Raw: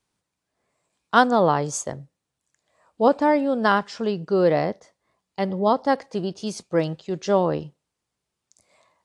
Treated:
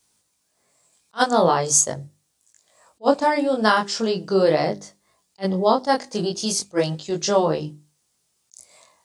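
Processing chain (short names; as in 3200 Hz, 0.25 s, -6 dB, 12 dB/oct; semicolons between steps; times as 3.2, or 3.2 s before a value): tone controls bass -1 dB, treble +13 dB; notches 50/100/150/200/250/300/350/400 Hz; chorus 0.41 Hz, delay 19 ms, depth 4.4 ms; in parallel at -3 dB: compressor, threshold -30 dBFS, peak gain reduction 16 dB; on the sum: attack slew limiter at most 500 dB/s; gain +3 dB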